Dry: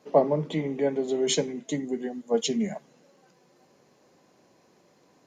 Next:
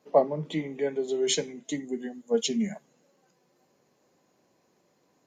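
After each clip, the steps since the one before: spectral noise reduction 7 dB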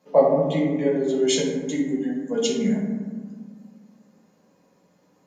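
reverb RT60 1.5 s, pre-delay 3 ms, DRR -3.5 dB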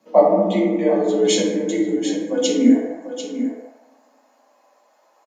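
high-pass sweep 78 Hz -> 710 Hz, 2.44–3; frequency shift +40 Hz; echo 0.743 s -10 dB; gain +3 dB

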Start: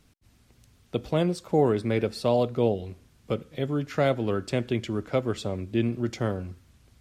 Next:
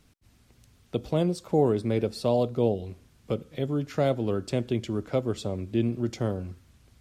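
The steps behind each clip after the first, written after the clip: dynamic EQ 1800 Hz, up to -8 dB, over -45 dBFS, Q 0.9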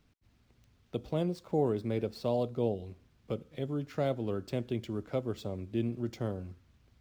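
median filter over 5 samples; gain -6.5 dB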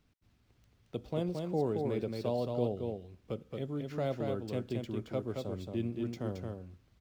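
echo 0.223 s -4 dB; gain -3 dB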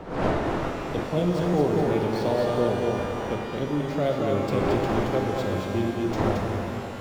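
wind noise 640 Hz -42 dBFS; shimmer reverb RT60 3.1 s, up +12 st, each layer -8 dB, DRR 2 dB; gain +8 dB

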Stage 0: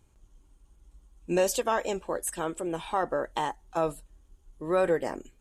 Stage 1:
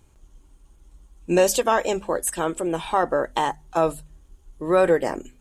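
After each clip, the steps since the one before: de-hum 50.43 Hz, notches 5; gain +7 dB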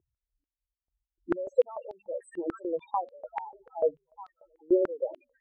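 delay with a stepping band-pass 0.416 s, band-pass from 2900 Hz, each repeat -0.7 oct, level -11 dB; loudest bins only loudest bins 4; stepped band-pass 6.8 Hz 360–4100 Hz; gain +2 dB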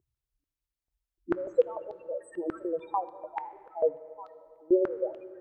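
reverb RT60 2.7 s, pre-delay 4 ms, DRR 13.5 dB

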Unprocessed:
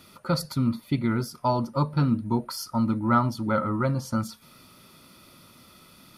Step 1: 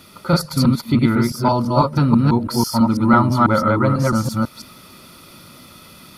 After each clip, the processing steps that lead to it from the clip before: reverse delay 0.165 s, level -0.5 dB; gain +7 dB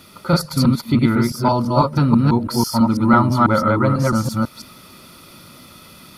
requantised 12-bit, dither none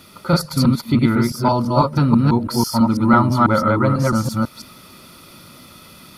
nothing audible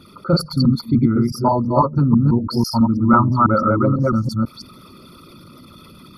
formant sharpening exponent 2

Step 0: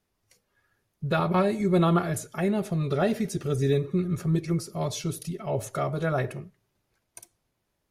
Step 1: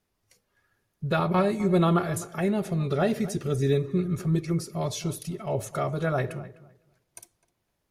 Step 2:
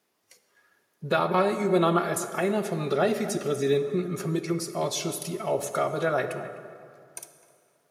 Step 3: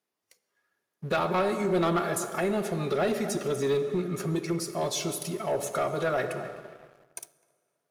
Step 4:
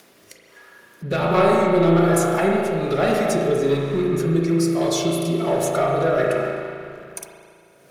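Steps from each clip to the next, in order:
darkening echo 0.255 s, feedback 19%, low-pass 2400 Hz, level -16.5 dB
HPF 280 Hz 12 dB/oct; in parallel at 0 dB: compressor, threshold -34 dBFS, peak gain reduction 13.5 dB; on the sum: plate-style reverb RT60 2.6 s, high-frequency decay 0.55×, DRR 10 dB
sample leveller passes 2; gain -8 dB
rotary speaker horn 1.2 Hz; upward compressor, threshold -38 dBFS; spring tank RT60 2.1 s, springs 36 ms, chirp 35 ms, DRR -1 dB; gain +7 dB

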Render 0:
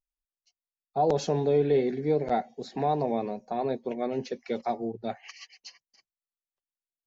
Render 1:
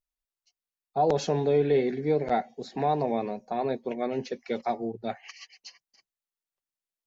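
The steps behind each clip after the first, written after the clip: dynamic EQ 2000 Hz, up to +4 dB, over -43 dBFS, Q 0.8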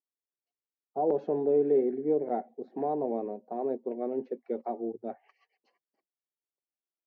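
ladder band-pass 400 Hz, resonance 30%; gain +8.5 dB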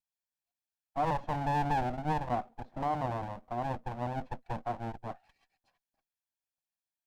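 minimum comb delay 1.2 ms

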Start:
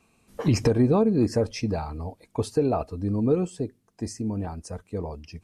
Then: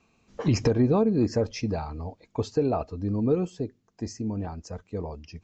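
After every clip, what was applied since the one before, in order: steep low-pass 7300 Hz 96 dB/oct; gain -1.5 dB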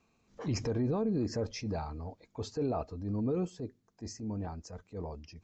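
bell 2800 Hz -4 dB 0.37 oct; transient shaper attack -7 dB, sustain +2 dB; limiter -19 dBFS, peak gain reduction 5.5 dB; gain -5.5 dB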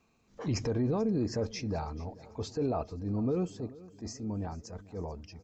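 feedback echo 0.438 s, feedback 56%, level -20 dB; gain +1.5 dB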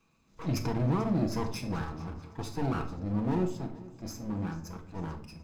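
minimum comb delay 0.79 ms; on a send at -4 dB: reverb RT60 0.60 s, pre-delay 6 ms

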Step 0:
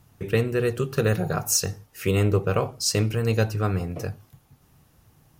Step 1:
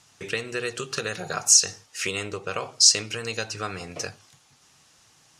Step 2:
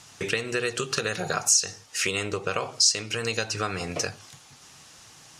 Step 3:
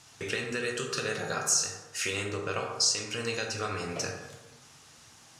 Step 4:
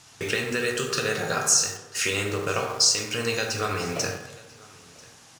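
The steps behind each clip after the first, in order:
compressor, threshold -24 dBFS, peak gain reduction 8 dB; LPF 7300 Hz 24 dB/oct; tilt +4.5 dB/oct; gain +2.5 dB
compressor 2:1, threshold -36 dBFS, peak gain reduction 13.5 dB; gain +8 dB
plate-style reverb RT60 1.2 s, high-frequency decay 0.45×, DRR 1 dB; gain -6.5 dB
in parallel at -10 dB: bit-crush 6-bit; on the sum: echo 0.992 s -24 dB; gain +3.5 dB

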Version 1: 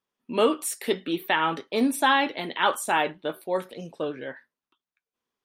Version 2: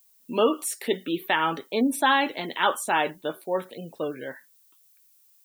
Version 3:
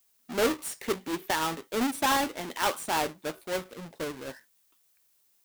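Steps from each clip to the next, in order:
spectral gate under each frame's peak -30 dB strong; added noise violet -60 dBFS
half-waves squared off; gain -8.5 dB

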